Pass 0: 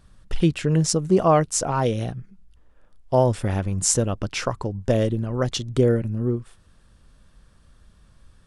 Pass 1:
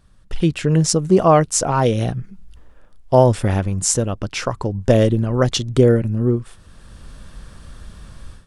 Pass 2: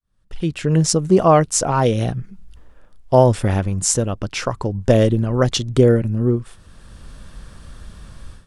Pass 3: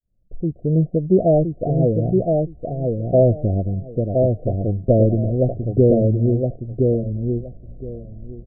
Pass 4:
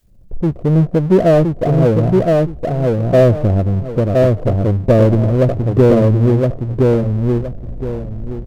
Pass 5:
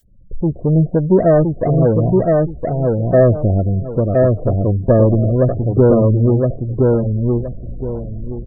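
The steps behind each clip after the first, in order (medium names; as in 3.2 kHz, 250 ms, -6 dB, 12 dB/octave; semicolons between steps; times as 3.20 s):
level rider gain up to 16.5 dB; trim -1 dB
fade-in on the opening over 0.78 s
Chebyshev low-pass 730 Hz, order 10; feedback delay 1017 ms, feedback 18%, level -3.5 dB; trim -1 dB
power-law waveshaper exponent 0.7; trim +2 dB
spectral gate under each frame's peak -30 dB strong; treble shelf 3.5 kHz +10.5 dB; trim -1 dB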